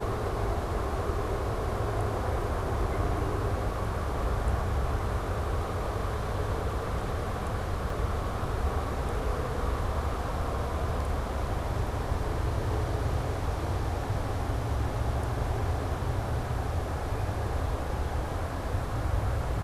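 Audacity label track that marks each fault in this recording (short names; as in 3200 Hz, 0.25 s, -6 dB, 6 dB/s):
7.900000	7.900000	gap 3.1 ms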